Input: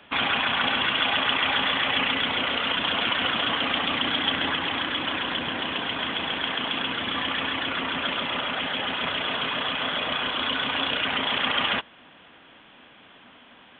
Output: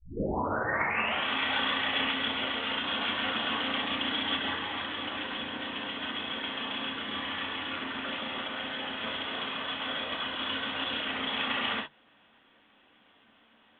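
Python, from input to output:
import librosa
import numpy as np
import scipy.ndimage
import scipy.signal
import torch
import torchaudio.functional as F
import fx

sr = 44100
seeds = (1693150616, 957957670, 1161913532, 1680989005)

y = fx.tape_start_head(x, sr, length_s=1.25)
y = fx.filter_lfo_notch(y, sr, shape='sine', hz=7.1, low_hz=360.0, high_hz=3000.0, q=2.6)
y = fx.hum_notches(y, sr, base_hz=50, count=3)
y = fx.rev_gated(y, sr, seeds[0], gate_ms=90, shape='flat', drr_db=-2.5)
y = fx.upward_expand(y, sr, threshold_db=-32.0, expansion=1.5)
y = y * 10.0 ** (-8.0 / 20.0)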